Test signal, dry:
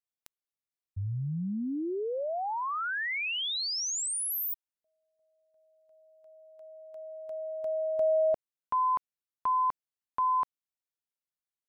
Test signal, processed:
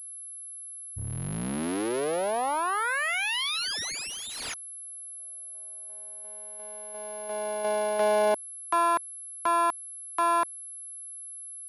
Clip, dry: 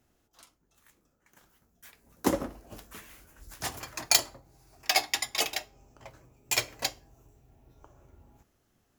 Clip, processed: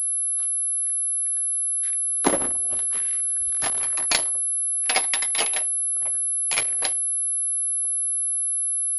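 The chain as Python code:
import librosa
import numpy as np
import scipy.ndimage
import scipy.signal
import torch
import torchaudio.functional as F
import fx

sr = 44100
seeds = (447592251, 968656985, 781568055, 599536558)

p1 = fx.cycle_switch(x, sr, every=3, mode='muted')
p2 = fx.low_shelf(p1, sr, hz=240.0, db=-11.0)
p3 = fx.rider(p2, sr, range_db=4, speed_s=0.5)
p4 = p2 + (p3 * 10.0 ** (-1.0 / 20.0))
p5 = fx.noise_reduce_blind(p4, sr, reduce_db=22)
p6 = fx.pwm(p5, sr, carrier_hz=11000.0)
y = p6 * 10.0 ** (1.0 / 20.0)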